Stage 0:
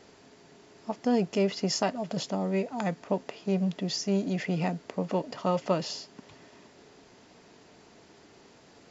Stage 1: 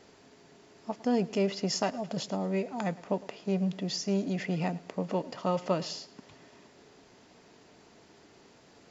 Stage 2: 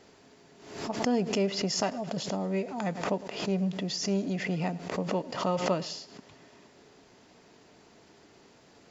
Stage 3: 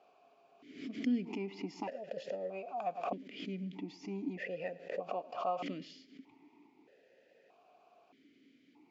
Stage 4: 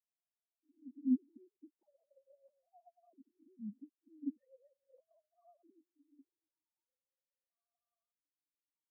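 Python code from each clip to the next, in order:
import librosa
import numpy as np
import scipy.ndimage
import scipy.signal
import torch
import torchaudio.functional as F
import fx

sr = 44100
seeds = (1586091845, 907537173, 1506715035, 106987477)

y1 = fx.echo_feedback(x, sr, ms=107, feedback_pct=37, wet_db=-20)
y1 = y1 * librosa.db_to_amplitude(-2.0)
y2 = fx.pre_swell(y1, sr, db_per_s=78.0)
y3 = fx.vowel_held(y2, sr, hz=1.6)
y3 = y3 * librosa.db_to_amplitude(3.0)
y4 = fx.sine_speech(y3, sr)
y4 = fx.filter_sweep_bandpass(y4, sr, from_hz=220.0, to_hz=1200.0, start_s=5.83, end_s=7.1, q=5.7)
y4 = fx.spectral_expand(y4, sr, expansion=1.5)
y4 = y4 * librosa.db_to_amplitude(6.5)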